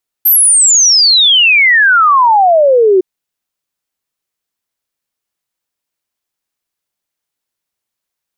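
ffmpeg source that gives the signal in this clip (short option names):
-f lavfi -i "aevalsrc='0.596*clip(min(t,2.76-t)/0.01,0,1)*sin(2*PI*13000*2.76/log(360/13000)*(exp(log(360/13000)*t/2.76)-1))':d=2.76:s=44100"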